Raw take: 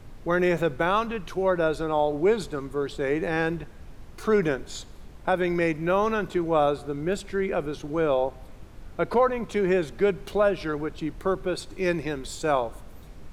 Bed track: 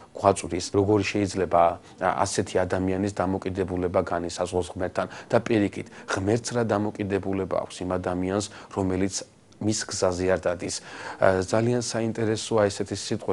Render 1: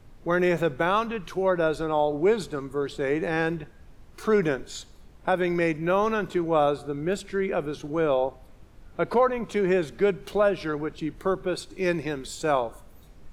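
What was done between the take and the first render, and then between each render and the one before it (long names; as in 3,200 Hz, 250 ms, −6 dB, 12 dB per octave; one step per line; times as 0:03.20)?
noise reduction from a noise print 6 dB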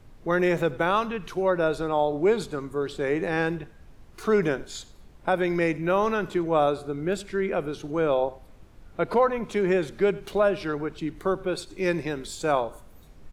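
single-tap delay 93 ms −21.5 dB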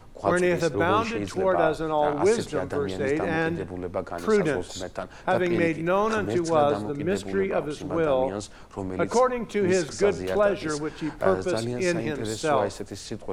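mix in bed track −6.5 dB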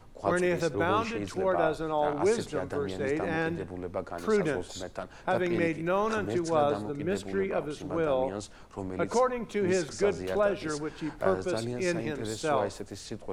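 level −4.5 dB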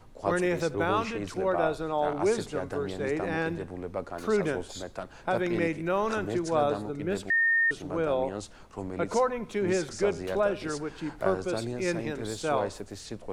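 0:07.30–0:07.71: beep over 1,830 Hz −20.5 dBFS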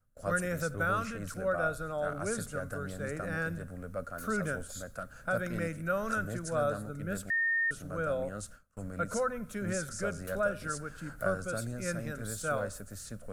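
noise gate with hold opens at −38 dBFS
drawn EQ curve 140 Hz 0 dB, 250 Hz −4 dB, 360 Hz −17 dB, 570 Hz −2 dB, 910 Hz −19 dB, 1,400 Hz +5 dB, 2,000 Hz −9 dB, 3,400 Hz −11 dB, 4,800 Hz −7 dB, 12,000 Hz +11 dB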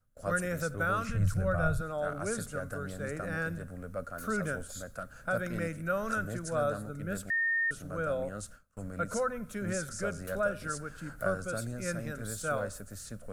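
0:01.09–0:01.81: low shelf with overshoot 180 Hz +14 dB, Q 1.5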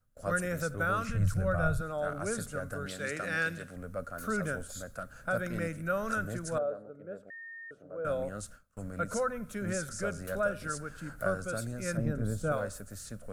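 0:02.86–0:03.76: meter weighting curve D
0:06.58–0:08.05: resonant band-pass 510 Hz, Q 2
0:11.97–0:12.52: tilt shelving filter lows +9 dB, about 870 Hz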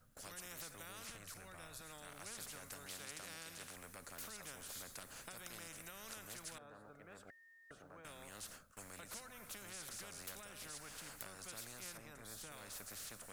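downward compressor, threshold −35 dBFS, peak gain reduction 12.5 dB
every bin compressed towards the loudest bin 4 to 1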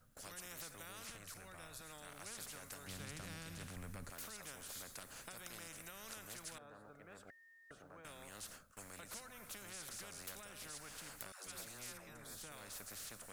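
0:02.87–0:04.10: bass and treble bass +14 dB, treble −3 dB
0:11.32–0:12.35: all-pass dispersion lows, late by 145 ms, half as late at 460 Hz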